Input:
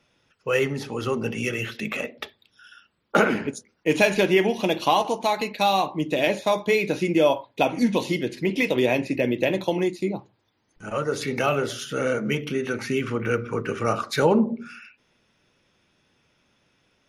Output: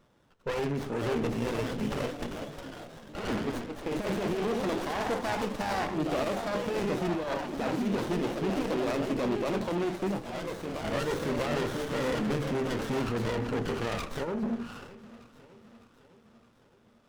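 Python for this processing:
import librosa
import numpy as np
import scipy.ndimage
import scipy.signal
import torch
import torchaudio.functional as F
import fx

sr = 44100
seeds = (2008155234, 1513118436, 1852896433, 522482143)

y = fx.dynamic_eq(x, sr, hz=1400.0, q=4.3, threshold_db=-42.0, ratio=4.0, max_db=6)
y = fx.over_compress(y, sr, threshold_db=-22.0, ratio=-0.5)
y = 10.0 ** (-26.0 / 20.0) * np.tanh(y / 10.0 ** (-26.0 / 20.0))
y = fx.echo_pitch(y, sr, ms=602, semitones=2, count=3, db_per_echo=-6.0)
y = fx.echo_feedback(y, sr, ms=610, feedback_pct=56, wet_db=-19.5)
y = fx.running_max(y, sr, window=17)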